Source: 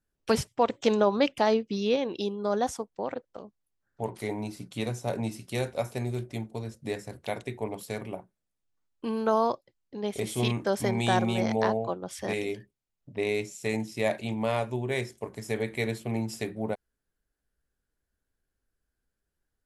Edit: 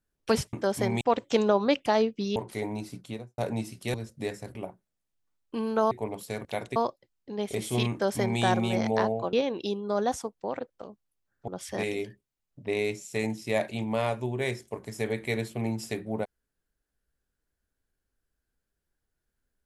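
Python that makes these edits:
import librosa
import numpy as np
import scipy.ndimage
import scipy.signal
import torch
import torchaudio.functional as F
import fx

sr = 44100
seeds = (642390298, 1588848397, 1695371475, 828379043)

y = fx.studio_fade_out(x, sr, start_s=4.62, length_s=0.43)
y = fx.edit(y, sr, fx.move(start_s=1.88, length_s=2.15, to_s=11.98),
    fx.cut(start_s=5.61, length_s=0.98),
    fx.swap(start_s=7.2, length_s=0.31, other_s=8.05, other_length_s=1.36),
    fx.duplicate(start_s=10.56, length_s=0.48, to_s=0.53), tone=tone)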